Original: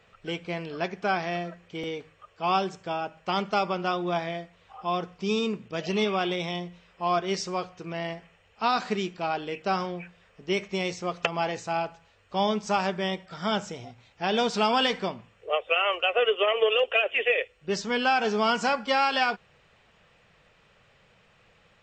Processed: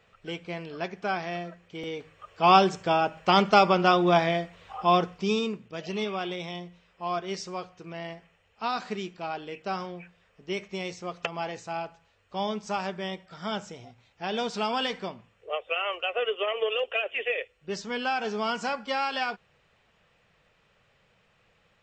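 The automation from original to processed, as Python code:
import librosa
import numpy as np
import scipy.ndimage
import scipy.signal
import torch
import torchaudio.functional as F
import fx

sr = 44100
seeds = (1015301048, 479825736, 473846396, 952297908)

y = fx.gain(x, sr, db=fx.line((1.81, -3.0), (2.44, 7.0), (4.95, 7.0), (5.64, -5.0)))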